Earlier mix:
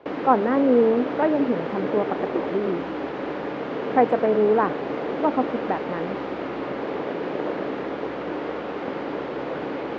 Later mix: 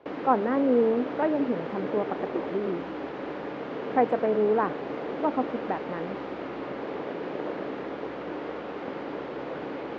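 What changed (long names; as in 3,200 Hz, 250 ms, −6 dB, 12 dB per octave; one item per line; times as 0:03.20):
speech −4.5 dB
background −5.5 dB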